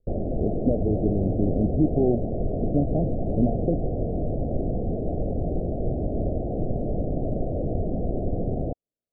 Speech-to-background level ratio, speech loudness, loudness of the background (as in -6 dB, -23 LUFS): 2.0 dB, -26.5 LUFS, -28.5 LUFS